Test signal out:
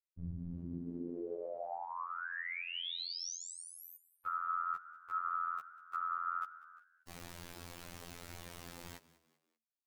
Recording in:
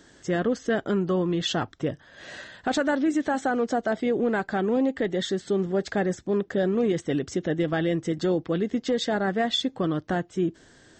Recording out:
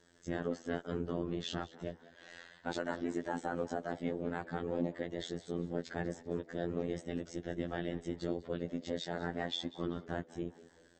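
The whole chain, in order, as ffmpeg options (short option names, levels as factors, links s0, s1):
-filter_complex "[0:a]afftfilt=real='hypot(re,im)*cos(2*PI*random(0))':imag='hypot(re,im)*sin(2*PI*random(1))':win_size=512:overlap=0.75,acrossover=split=6400[s0][s1];[s1]acompressor=threshold=0.00501:ratio=4:attack=1:release=60[s2];[s0][s2]amix=inputs=2:normalize=0,afftfilt=real='hypot(re,im)*cos(PI*b)':imag='0':win_size=2048:overlap=0.75,asplit=4[s3][s4][s5][s6];[s4]adelay=194,afreqshift=75,volume=0.112[s7];[s5]adelay=388,afreqshift=150,volume=0.0447[s8];[s6]adelay=582,afreqshift=225,volume=0.018[s9];[s3][s7][s8][s9]amix=inputs=4:normalize=0,volume=0.668"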